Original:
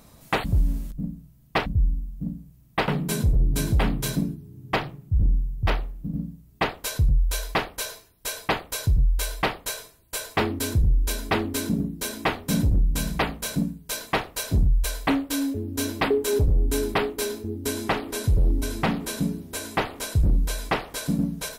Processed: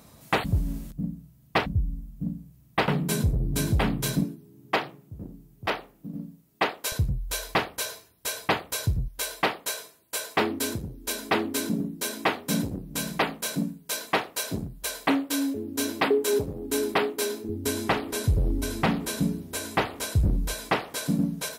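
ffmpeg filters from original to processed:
-af "asetnsamples=n=441:p=0,asendcmd='4.24 highpass f 260;6.92 highpass f 85;9.08 highpass f 200;17.49 highpass f 55;20.53 highpass f 120',highpass=68"

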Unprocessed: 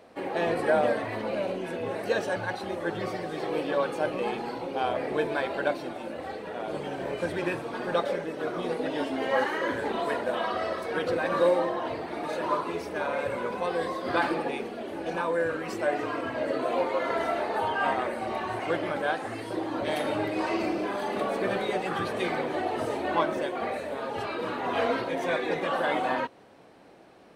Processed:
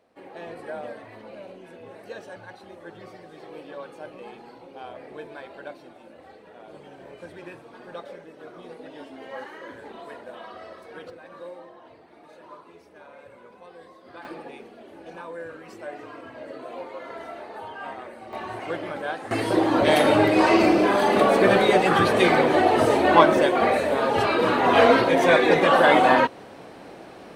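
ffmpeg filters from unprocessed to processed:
-af "asetnsamples=n=441:p=0,asendcmd='11.1 volume volume -17.5dB;14.25 volume volume -9.5dB;18.33 volume volume -2dB;19.31 volume volume 11dB',volume=-11.5dB"

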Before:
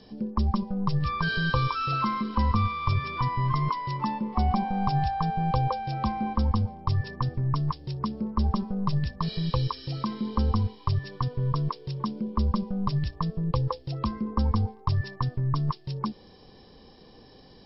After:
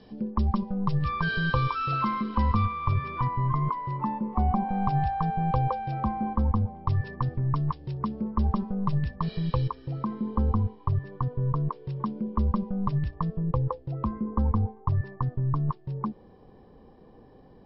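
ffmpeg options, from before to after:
-af "asetnsamples=n=441:p=0,asendcmd='2.65 lowpass f 2000;3.27 lowpass f 1400;4.69 lowpass f 2300;6 lowpass f 1500;6.75 lowpass f 2500;9.68 lowpass f 1300;11.75 lowpass f 2000;13.43 lowpass f 1300',lowpass=3.3k"

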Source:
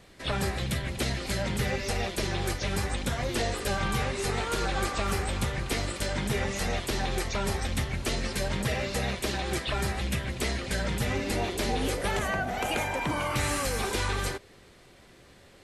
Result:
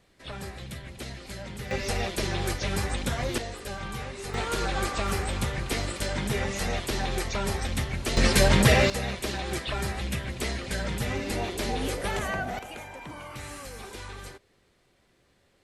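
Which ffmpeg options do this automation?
-af "asetnsamples=n=441:p=0,asendcmd='1.71 volume volume 1dB;3.38 volume volume -7dB;4.34 volume volume 0.5dB;8.17 volume volume 10.5dB;8.9 volume volume -1dB;12.59 volume volume -11.5dB',volume=-9dB"

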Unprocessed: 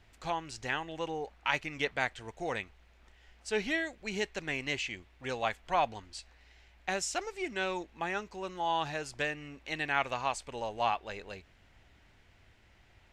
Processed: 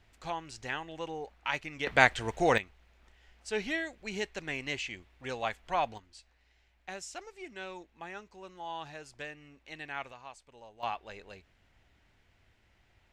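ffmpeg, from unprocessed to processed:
-af "asetnsamples=n=441:p=0,asendcmd='1.87 volume volume 10dB;2.58 volume volume -1.5dB;5.98 volume volume -9dB;10.12 volume volume -15.5dB;10.83 volume volume -5dB',volume=-2.5dB"

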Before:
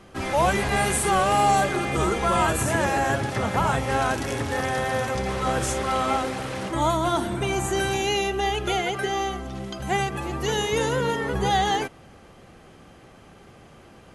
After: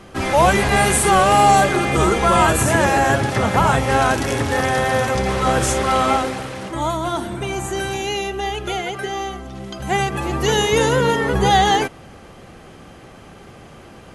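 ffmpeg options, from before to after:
-af "volume=14dB,afade=t=out:st=6.07:d=0.47:silence=0.473151,afade=t=in:st=9.56:d=0.8:silence=0.446684"

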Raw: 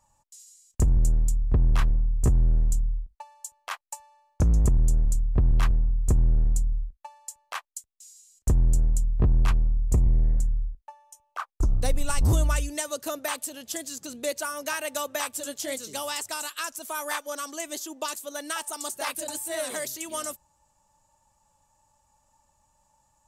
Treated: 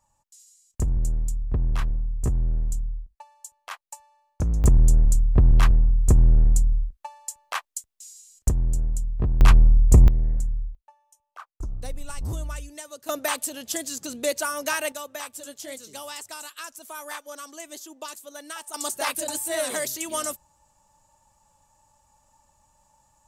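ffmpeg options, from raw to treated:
-af "asetnsamples=n=441:p=0,asendcmd='4.64 volume volume 5dB;8.49 volume volume -2.5dB;9.41 volume volume 8.5dB;10.08 volume volume -1dB;10.75 volume volume -9dB;13.09 volume volume 4dB;14.92 volume volume -5.5dB;18.74 volume volume 4dB',volume=-3dB"

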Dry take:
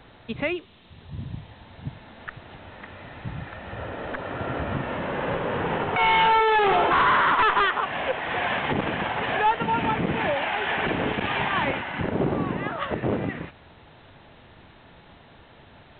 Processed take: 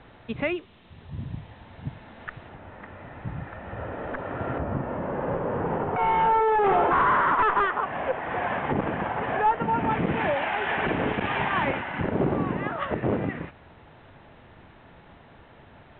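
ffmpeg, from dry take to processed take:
-af "asetnsamples=n=441:p=0,asendcmd='2.49 lowpass f 1800;4.58 lowpass f 1100;6.64 lowpass f 1500;9.91 lowpass f 2500',lowpass=2.9k"

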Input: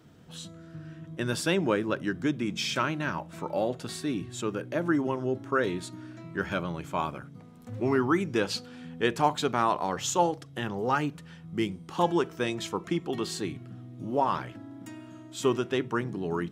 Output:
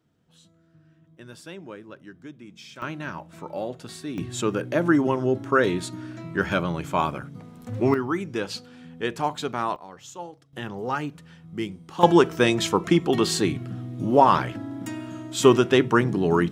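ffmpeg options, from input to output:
-af "asetnsamples=n=441:p=0,asendcmd='2.82 volume volume -2.5dB;4.18 volume volume 6.5dB;7.94 volume volume -1.5dB;9.76 volume volume -13dB;10.53 volume volume -1dB;12.03 volume volume 10dB',volume=-14dB"

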